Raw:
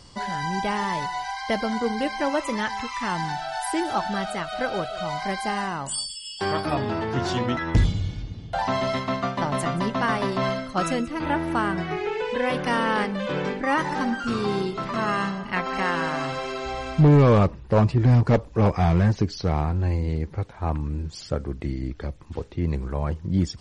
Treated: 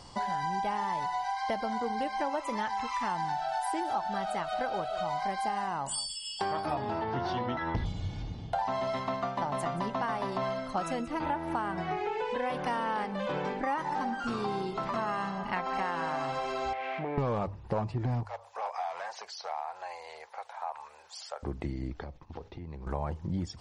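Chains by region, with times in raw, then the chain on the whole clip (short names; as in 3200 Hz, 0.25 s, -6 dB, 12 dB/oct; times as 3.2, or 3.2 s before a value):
7.01–7.86 polynomial smoothing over 15 samples + notch 2500 Hz, Q 23
16.73–17.18 switching spikes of -17.5 dBFS + speaker cabinet 430–2600 Hz, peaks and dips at 950 Hz -6 dB, 1300 Hz -4 dB, 2200 Hz +7 dB + compressor 5:1, threshold -31 dBFS
18.25–21.43 inverse Chebyshev high-pass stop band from 310 Hz + high shelf 7800 Hz +4 dB + compressor 2:1, threshold -41 dBFS
22–22.87 steep low-pass 6100 Hz + expander -43 dBFS + compressor 12:1, threshold -36 dBFS
whole clip: bell 820 Hz +9.5 dB 0.82 oct; notches 50/100 Hz; compressor 4:1, threshold -28 dBFS; gain -2.5 dB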